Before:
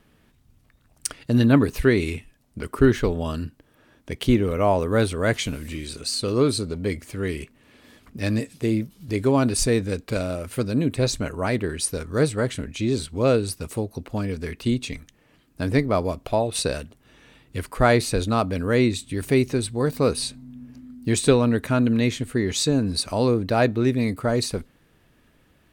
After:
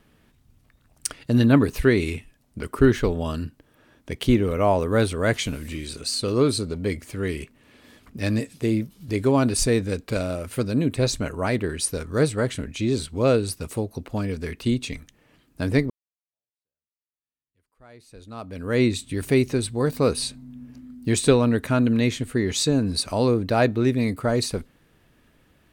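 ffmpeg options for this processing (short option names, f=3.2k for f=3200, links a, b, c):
-filter_complex "[0:a]asplit=2[a][b];[a]atrim=end=15.9,asetpts=PTS-STARTPTS,afade=t=out:st=15.896:d=0.004:c=hsin[c];[b]atrim=start=15.9,asetpts=PTS-STARTPTS,afade=t=in:d=2.92:c=exp[d];[c][d]concat=n=2:v=0:a=1"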